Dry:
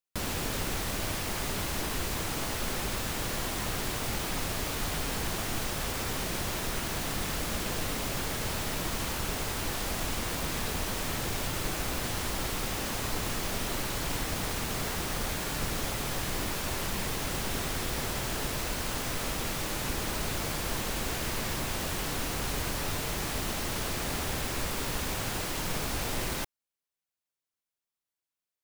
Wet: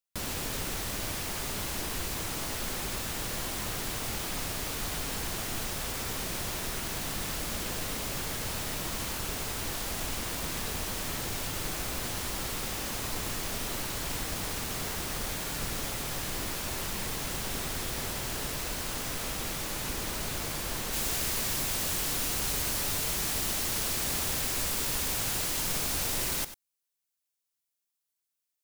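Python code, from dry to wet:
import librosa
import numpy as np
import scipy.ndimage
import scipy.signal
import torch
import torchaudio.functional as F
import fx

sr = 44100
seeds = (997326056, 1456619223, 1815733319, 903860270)

y = fx.high_shelf(x, sr, hz=3600.0, db=fx.steps((0.0, 4.5), (20.92, 11.0)))
y = y + 10.0 ** (-13.0 / 20.0) * np.pad(y, (int(96 * sr / 1000.0), 0))[:len(y)]
y = y * 10.0 ** (-3.5 / 20.0)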